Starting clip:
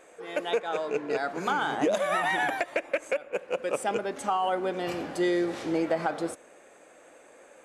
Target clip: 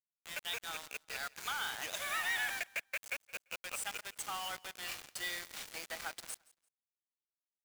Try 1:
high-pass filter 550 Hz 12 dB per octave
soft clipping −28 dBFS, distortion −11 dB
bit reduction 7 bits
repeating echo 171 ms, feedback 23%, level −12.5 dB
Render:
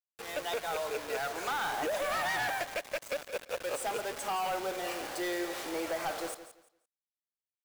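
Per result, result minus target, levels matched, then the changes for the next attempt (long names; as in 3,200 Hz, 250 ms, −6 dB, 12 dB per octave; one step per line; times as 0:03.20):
500 Hz band +13.0 dB; echo-to-direct +10.5 dB
change: high-pass filter 2,100 Hz 12 dB per octave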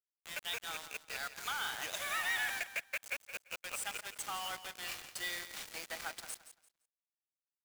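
echo-to-direct +10.5 dB
change: repeating echo 171 ms, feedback 23%, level −23 dB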